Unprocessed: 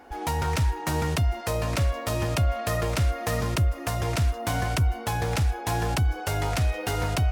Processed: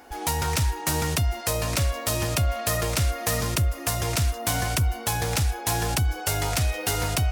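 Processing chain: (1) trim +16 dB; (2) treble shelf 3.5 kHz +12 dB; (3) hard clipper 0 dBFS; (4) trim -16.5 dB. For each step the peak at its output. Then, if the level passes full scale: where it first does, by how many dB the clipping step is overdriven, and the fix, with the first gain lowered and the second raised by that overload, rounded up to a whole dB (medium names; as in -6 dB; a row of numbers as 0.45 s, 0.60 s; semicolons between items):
+1.5 dBFS, +8.5 dBFS, 0.0 dBFS, -16.5 dBFS; step 1, 8.5 dB; step 1 +7 dB, step 4 -7.5 dB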